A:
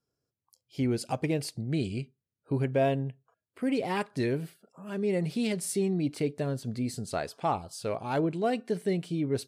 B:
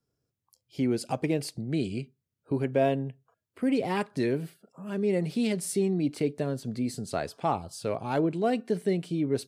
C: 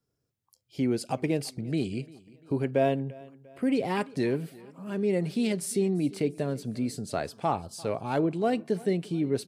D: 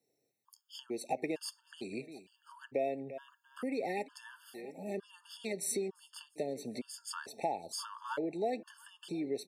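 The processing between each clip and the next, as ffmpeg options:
-filter_complex "[0:a]lowshelf=f=290:g=6.5,acrossover=split=190|1800[s0][s1][s2];[s0]acompressor=threshold=0.01:ratio=6[s3];[s3][s1][s2]amix=inputs=3:normalize=0"
-af "aecho=1:1:346|692|1038:0.0794|0.0373|0.0175"
-af "acompressor=threshold=0.0178:ratio=6,highpass=360,afftfilt=real='re*gt(sin(2*PI*1.1*pts/sr)*(1-2*mod(floor(b*sr/1024/900),2)),0)':imag='im*gt(sin(2*PI*1.1*pts/sr)*(1-2*mod(floor(b*sr/1024/900),2)),0)':win_size=1024:overlap=0.75,volume=2"

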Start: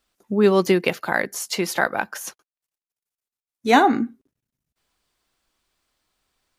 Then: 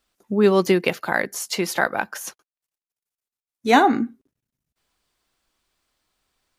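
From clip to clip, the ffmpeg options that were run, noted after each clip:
-af anull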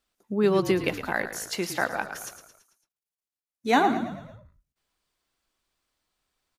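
-filter_complex "[0:a]asplit=6[s0][s1][s2][s3][s4][s5];[s1]adelay=111,afreqshift=-39,volume=0.282[s6];[s2]adelay=222,afreqshift=-78,volume=0.145[s7];[s3]adelay=333,afreqshift=-117,volume=0.0733[s8];[s4]adelay=444,afreqshift=-156,volume=0.0376[s9];[s5]adelay=555,afreqshift=-195,volume=0.0191[s10];[s0][s6][s7][s8][s9][s10]amix=inputs=6:normalize=0,volume=0.501"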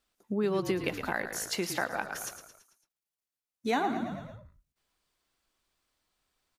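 -af "acompressor=threshold=0.0355:ratio=2.5"

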